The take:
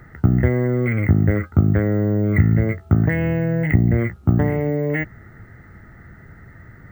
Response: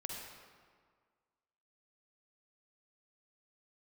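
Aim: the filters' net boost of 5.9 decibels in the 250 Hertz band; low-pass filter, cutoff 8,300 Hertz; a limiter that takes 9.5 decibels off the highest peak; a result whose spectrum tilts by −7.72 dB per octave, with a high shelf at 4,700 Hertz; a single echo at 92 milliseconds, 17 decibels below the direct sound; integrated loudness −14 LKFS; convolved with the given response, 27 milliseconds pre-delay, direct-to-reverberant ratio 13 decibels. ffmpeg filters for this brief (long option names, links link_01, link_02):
-filter_complex "[0:a]lowpass=8300,equalizer=frequency=250:width_type=o:gain=8,highshelf=frequency=4700:gain=7,alimiter=limit=-7.5dB:level=0:latency=1,aecho=1:1:92:0.141,asplit=2[link_01][link_02];[1:a]atrim=start_sample=2205,adelay=27[link_03];[link_02][link_03]afir=irnorm=-1:irlink=0,volume=-12.5dB[link_04];[link_01][link_04]amix=inputs=2:normalize=0,volume=3.5dB"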